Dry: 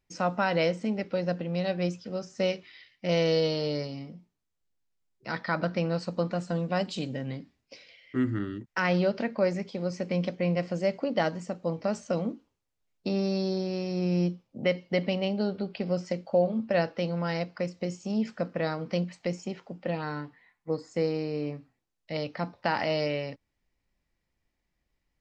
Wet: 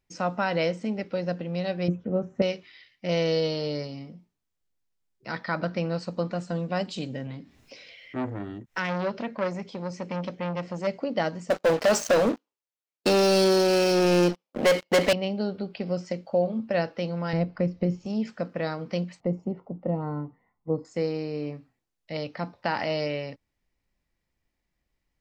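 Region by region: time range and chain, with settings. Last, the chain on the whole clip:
1.88–2.42 s: boxcar filter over 9 samples + tilt shelf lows +9 dB, about 1.5 kHz
7.27–10.87 s: band-stop 4.7 kHz, Q 14 + upward compressor, threshold -39 dBFS + transformer saturation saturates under 1.2 kHz
11.50–15.13 s: high-pass 420 Hz + waveshaping leveller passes 5
17.33–18.06 s: low-pass 5.8 kHz 24 dB/octave + tilt EQ -3.5 dB/octave + tape noise reduction on one side only encoder only
19.20–20.85 s: Savitzky-Golay filter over 65 samples + bass shelf 340 Hz +7 dB
whole clip: none

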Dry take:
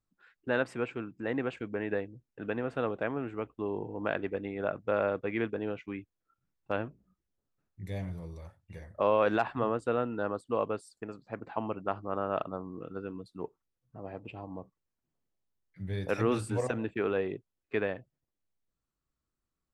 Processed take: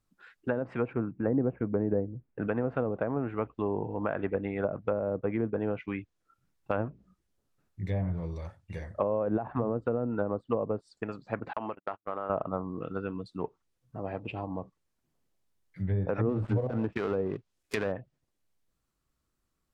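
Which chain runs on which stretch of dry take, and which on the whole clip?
0.93–2.48 s: low-pass 2.4 kHz 24 dB/octave + tilt shelf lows +4 dB, about 920 Hz
11.53–12.30 s: gate -37 dBFS, range -58 dB + compression 10:1, threshold -40 dBFS + overdrive pedal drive 14 dB, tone 2.2 kHz, clips at -24.5 dBFS
16.29–17.92 s: dead-time distortion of 0.15 ms + treble shelf 3.8 kHz +8 dB
whole clip: dynamic bell 350 Hz, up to -5 dB, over -44 dBFS, Q 1.3; peak limiter -21.5 dBFS; low-pass that closes with the level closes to 510 Hz, closed at -30 dBFS; trim +7 dB

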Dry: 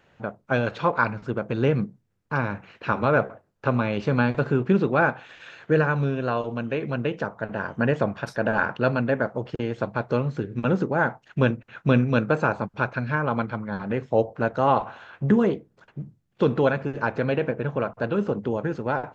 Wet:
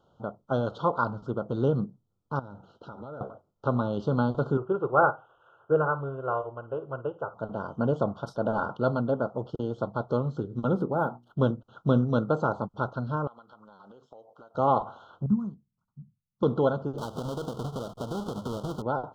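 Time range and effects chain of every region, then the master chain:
2.39–3.21 s: peaking EQ 3.1 kHz -3 dB 0.68 oct + compression 4:1, threshold -36 dBFS + band-stop 1.1 kHz, Q 6.1
4.57–7.34 s: FFT filter 140 Hz 0 dB, 210 Hz -15 dB, 380 Hz +3 dB, 730 Hz +4 dB, 2.4 kHz +10 dB, 4.4 kHz -27 dB, 7.6 kHz -12 dB + flutter echo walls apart 9 m, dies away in 0.26 s + upward expansion, over -30 dBFS
10.74–11.39 s: treble shelf 4.3 kHz -5 dB + hum notches 60/120/180/240/300/360 Hz + decimation joined by straight lines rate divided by 3×
13.27–14.55 s: high-pass 1.5 kHz 6 dB/octave + compression 12:1, threshold -42 dBFS
15.26–16.43 s: FFT filter 220 Hz 0 dB, 320 Hz -19 dB, 490 Hz -27 dB, 1.1 kHz -8 dB, 3.2 kHz -27 dB, 5.1 kHz -8 dB + upward expansion, over -40 dBFS
16.98–18.82 s: square wave that keeps the level + compression 16:1, threshold -26 dBFS + loudspeaker Doppler distortion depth 0.15 ms
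whole clip: Chebyshev band-stop 1.4–3.1 kHz, order 4; treble shelf 5 kHz -9.5 dB; trim -2.5 dB

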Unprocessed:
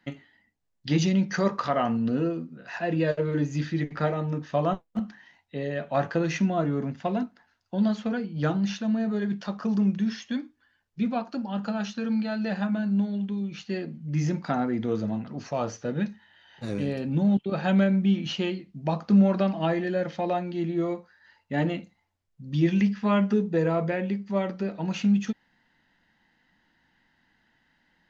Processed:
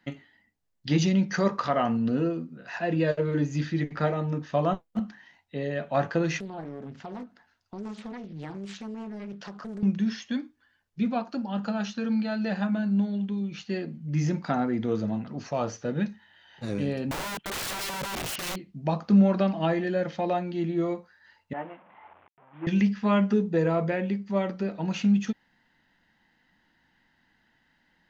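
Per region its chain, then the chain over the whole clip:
6.39–9.83 s: compression 3:1, threshold -38 dBFS + loudspeaker Doppler distortion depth 0.72 ms
17.11–18.56 s: peaking EQ 1.6 kHz +12.5 dB 0.62 oct + compression, threshold -23 dBFS + integer overflow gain 28 dB
21.53–22.67 s: one-bit delta coder 16 kbps, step -32.5 dBFS + band-pass filter 900 Hz, Q 1.7 + upward expansion, over -46 dBFS
whole clip: none

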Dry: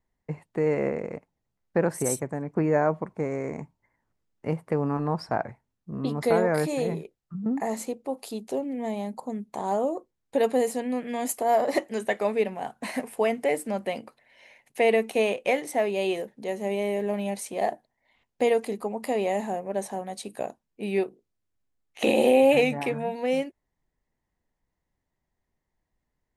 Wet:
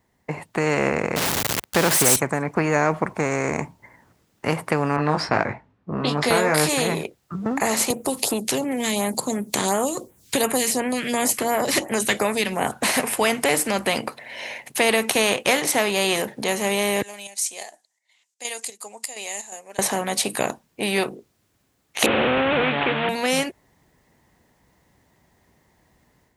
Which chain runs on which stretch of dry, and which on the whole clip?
1.16–2.16 s: jump at every zero crossing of -31.5 dBFS + high-pass 78 Hz
4.96–6.69 s: level-controlled noise filter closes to 1.6 kHz, open at -19 dBFS + doubling 20 ms -5.5 dB
7.90–12.72 s: phase shifter stages 2, 2.8 Hz, lowest notch 670–4700 Hz + three bands compressed up and down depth 70%
17.02–19.79 s: band-pass filter 7.2 kHz, Q 2.6 + square tremolo 2.8 Hz, depth 60%, duty 70%
22.06–23.09 s: one-bit delta coder 16 kbps, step -33.5 dBFS + high-pass 250 Hz 6 dB/octave
whole clip: high-pass 78 Hz; level rider gain up to 7 dB; spectrum-flattening compressor 2:1

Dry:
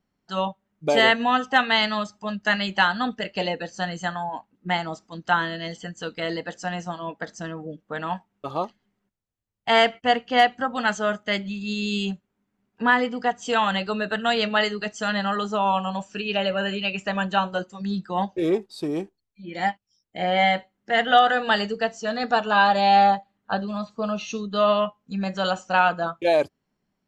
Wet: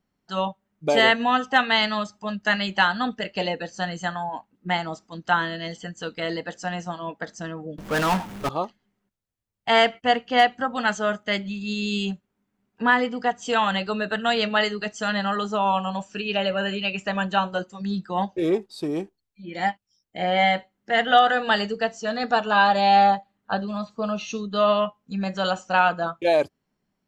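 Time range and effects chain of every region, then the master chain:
7.78–8.49 s: upward compressor, threshold -44 dBFS + power-law waveshaper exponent 0.35 + three bands expanded up and down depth 70%
whole clip: none

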